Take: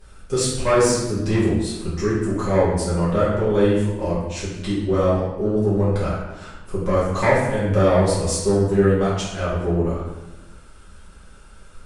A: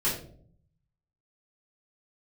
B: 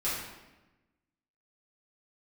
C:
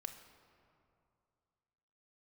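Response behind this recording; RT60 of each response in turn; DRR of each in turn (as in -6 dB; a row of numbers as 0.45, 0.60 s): B; 0.60, 1.1, 2.5 s; -10.0, -10.0, 7.0 dB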